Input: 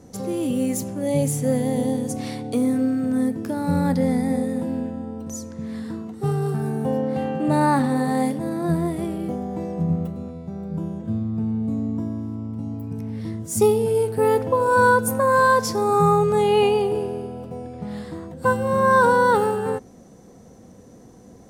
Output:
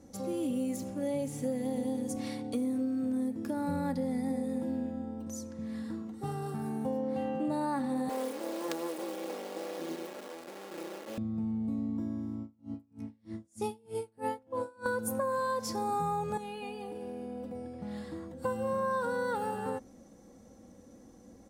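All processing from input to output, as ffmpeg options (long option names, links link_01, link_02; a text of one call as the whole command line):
ffmpeg -i in.wav -filter_complex "[0:a]asettb=1/sr,asplit=3[link_01][link_02][link_03];[link_01]atrim=end=0.764[link_04];[link_02]atrim=start=0.76:end=2.02,asetpts=PTS-STARTPTS,afade=type=in:duration=0.004:curve=qsin,afade=type=out:start_time=1.256:duration=0.004:curve=qsin,acrossover=split=5500[link_05][link_06];[link_06]acompressor=threshold=-37dB:ratio=4:attack=1:release=60[link_07];[link_05][link_07]amix=inputs=2:normalize=0,aeval=exprs='sgn(val(0))*max(abs(val(0))-0.00282,0)':channel_layout=same[link_08];[link_03]atrim=start=2.016[link_09];[link_04][link_08]acrossfade=duration=0.004:curve1=hsin:curve2=qsin[link_10];[link_10][link_09]acrossfade=duration=0.004:curve1=qsin:curve2=hsin,asettb=1/sr,asplit=3[link_11][link_12][link_13];[link_11]atrim=end=8.094[link_14];[link_12]atrim=start=8.09:end=11.18,asetpts=PTS-STARTPTS,afade=type=in:duration=0.004:curve=qsin,afade=type=out:start_time=3.086:duration=0.004:curve=qsin,acrusher=bits=3:dc=4:mix=0:aa=0.000001,highpass=frequency=420:width_type=q:width=2.1[link_15];[link_13]atrim=start=11.176[link_16];[link_14][link_15]acrossfade=duration=0.004:curve1=hsin:curve2=qsin[link_17];[link_17][link_16]acrossfade=duration=0.004:curve1=qsin:curve2=hsin,asettb=1/sr,asplit=3[link_18][link_19][link_20];[link_18]atrim=end=12.414[link_21];[link_19]atrim=start=12.41:end=14.86,asetpts=PTS-STARTPTS,afade=type=in:duration=0.004:curve=qsin,afade=type=out:start_time=2.446:duration=0.004:curve=qsin,lowpass=frequency=11000:width=0.5412,lowpass=frequency=11000:width=1.3066,asplit=2[link_22][link_23];[link_23]adelay=15,volume=-11dB[link_24];[link_22][link_24]amix=inputs=2:normalize=0,atrim=end_sample=108045,aeval=exprs='val(0)*pow(10,-32*(0.5-0.5*cos(2*PI*3.2*n/s))/20)':channel_layout=same[link_25];[link_20]atrim=start=14.856[link_26];[link_21][link_25]acrossfade=duration=0.004:curve1=hsin:curve2=qsin[link_27];[link_27][link_26]acrossfade=duration=0.004:curve1=qsin:curve2=hsin,asettb=1/sr,asplit=3[link_28][link_29][link_30];[link_28]atrim=end=16.374[link_31];[link_29]atrim=start=16.37:end=17.55,asetpts=PTS-STARTPTS,afade=type=in:duration=0.004:curve=qsin,afade=type=out:start_time=1.176:duration=0.004:curve=qsin,aecho=1:1:4.1:0.67,atrim=end_sample=52038,acompressor=threshold=-28dB:ratio=4:attack=3.2:release=140:knee=1:detection=peak[link_32];[link_30]atrim=start=17.546[link_33];[link_31][link_32]acrossfade=duration=0.004:curve1=hsin:curve2=qsin[link_34];[link_34][link_33]acrossfade=duration=0.004:curve1=qsin:curve2=hsin,aecho=1:1:3.6:0.53,acompressor=threshold=-20dB:ratio=6,volume=-9dB" out.wav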